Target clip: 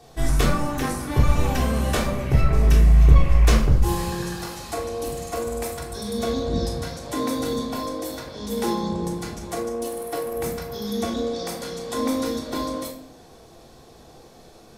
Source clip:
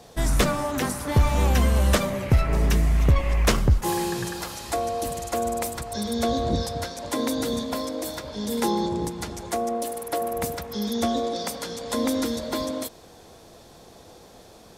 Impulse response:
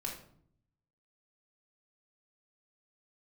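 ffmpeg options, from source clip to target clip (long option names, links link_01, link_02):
-filter_complex "[1:a]atrim=start_sample=2205[link_01];[0:a][link_01]afir=irnorm=-1:irlink=0,volume=-1dB"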